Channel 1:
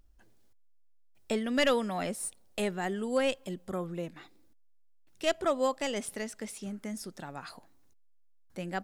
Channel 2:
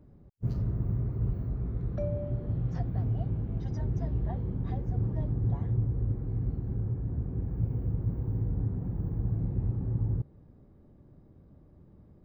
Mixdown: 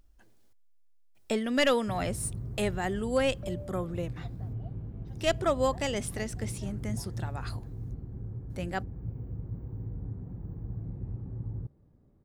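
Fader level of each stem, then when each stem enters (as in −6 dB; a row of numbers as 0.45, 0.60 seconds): +1.5, −7.5 decibels; 0.00, 1.45 seconds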